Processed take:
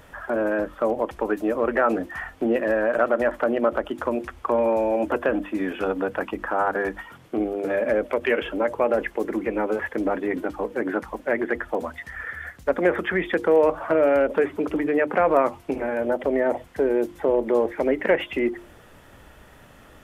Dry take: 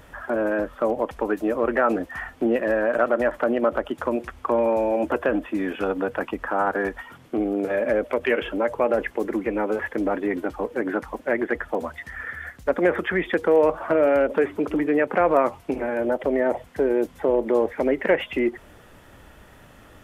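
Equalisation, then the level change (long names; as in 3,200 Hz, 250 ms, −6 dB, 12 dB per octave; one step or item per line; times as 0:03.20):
mains-hum notches 50/100/150/200/250/300/350 Hz
0.0 dB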